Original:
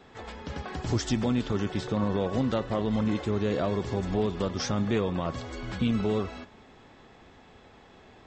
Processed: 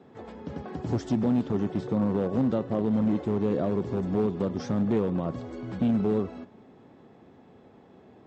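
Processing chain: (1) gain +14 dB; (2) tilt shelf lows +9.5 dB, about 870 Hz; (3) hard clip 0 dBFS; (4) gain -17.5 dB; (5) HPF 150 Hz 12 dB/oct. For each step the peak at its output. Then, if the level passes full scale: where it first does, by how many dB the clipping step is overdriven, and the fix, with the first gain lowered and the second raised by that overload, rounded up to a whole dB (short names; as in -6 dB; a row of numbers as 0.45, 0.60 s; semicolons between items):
-1.5, +6.5, 0.0, -17.5, -14.5 dBFS; step 2, 6.5 dB; step 1 +7 dB, step 4 -10.5 dB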